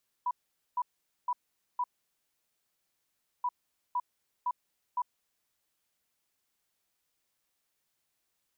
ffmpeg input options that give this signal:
-f lavfi -i "aevalsrc='0.0447*sin(2*PI*984*t)*clip(min(mod(mod(t,3.18),0.51),0.05-mod(mod(t,3.18),0.51))/0.005,0,1)*lt(mod(t,3.18),2.04)':d=6.36:s=44100"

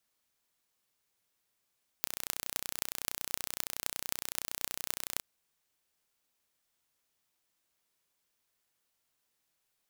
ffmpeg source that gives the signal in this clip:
-f lavfi -i "aevalsrc='0.708*eq(mod(n,1436),0)*(0.5+0.5*eq(mod(n,11488),0))':d=3.18:s=44100"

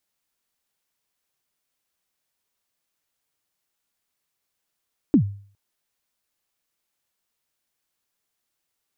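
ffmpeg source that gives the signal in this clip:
-f lavfi -i "aevalsrc='0.355*pow(10,-3*t/0.47)*sin(2*PI*(330*0.09/log(100/330)*(exp(log(100/330)*min(t,0.09)/0.09)-1)+100*max(t-0.09,0)))':d=0.41:s=44100"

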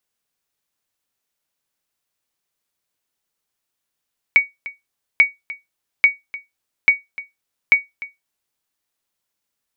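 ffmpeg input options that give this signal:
-f lavfi -i "aevalsrc='0.708*(sin(2*PI*2250*mod(t,0.84))*exp(-6.91*mod(t,0.84)/0.18)+0.119*sin(2*PI*2250*max(mod(t,0.84)-0.3,0))*exp(-6.91*max(mod(t,0.84)-0.3,0)/0.18))':d=4.2:s=44100"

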